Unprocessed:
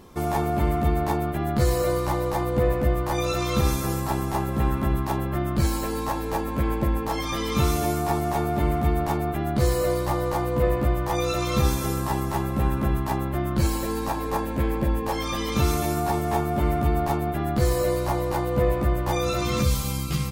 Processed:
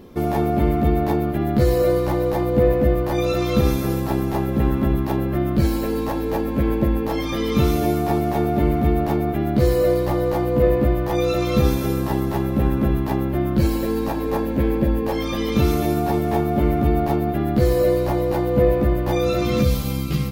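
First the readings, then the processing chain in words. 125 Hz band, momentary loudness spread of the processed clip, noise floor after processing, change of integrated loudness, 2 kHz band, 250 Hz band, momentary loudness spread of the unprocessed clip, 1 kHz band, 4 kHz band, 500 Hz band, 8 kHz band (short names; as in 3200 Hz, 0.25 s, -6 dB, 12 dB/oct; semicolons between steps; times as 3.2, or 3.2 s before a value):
+3.5 dB, 5 LU, -24 dBFS, +4.5 dB, +1.0 dB, +6.5 dB, 4 LU, +0.5 dB, 0.0 dB, +6.0 dB, -4.5 dB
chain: graphic EQ 250/500/1000/8000 Hz +5/+4/-6/-10 dB; thinning echo 0.112 s, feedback 80%, level -19.5 dB; gain +2.5 dB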